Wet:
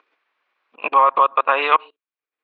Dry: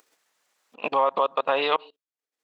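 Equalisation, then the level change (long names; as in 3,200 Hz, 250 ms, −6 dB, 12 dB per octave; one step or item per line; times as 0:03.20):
high-frequency loss of the air 74 metres
dynamic equaliser 1,500 Hz, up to +7 dB, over −35 dBFS, Q 0.75
loudspeaker in its box 250–3,800 Hz, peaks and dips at 350 Hz +4 dB, 1,100 Hz +7 dB, 1,500 Hz +4 dB, 2,400 Hz +8 dB
−1.0 dB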